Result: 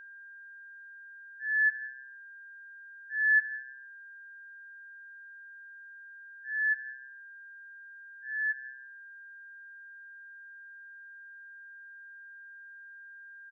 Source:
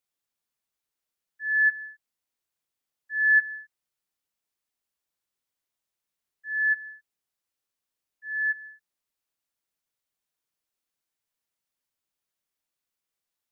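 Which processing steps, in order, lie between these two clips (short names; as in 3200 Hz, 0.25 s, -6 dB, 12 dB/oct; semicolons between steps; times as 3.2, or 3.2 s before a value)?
downsampling 32000 Hz; reverb RT60 1.2 s, pre-delay 3 ms, DRR 11 dB; whine 1600 Hz -38 dBFS; gain -8.5 dB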